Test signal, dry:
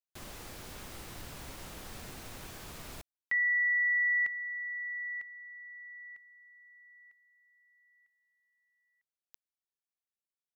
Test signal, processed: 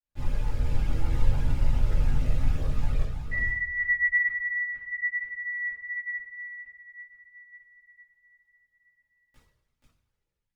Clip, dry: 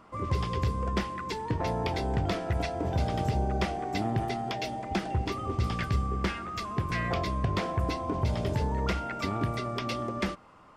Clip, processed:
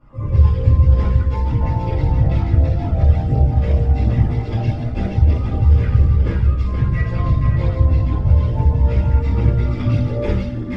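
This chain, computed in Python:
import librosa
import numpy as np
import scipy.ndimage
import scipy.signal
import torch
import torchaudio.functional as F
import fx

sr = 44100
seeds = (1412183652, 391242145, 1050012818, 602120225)

p1 = fx.riaa(x, sr, side='playback')
p2 = p1 + fx.echo_multitap(p1, sr, ms=(52, 480), db=(-8.5, -3.5), dry=0)
p3 = fx.rev_double_slope(p2, sr, seeds[0], early_s=0.45, late_s=2.3, knee_db=-17, drr_db=-9.5)
p4 = fx.chorus_voices(p3, sr, voices=6, hz=0.69, base_ms=16, depth_ms=1.2, mix_pct=65)
p5 = fx.rider(p4, sr, range_db=5, speed_s=2.0)
y = p5 * librosa.db_to_amplitude(-7.5)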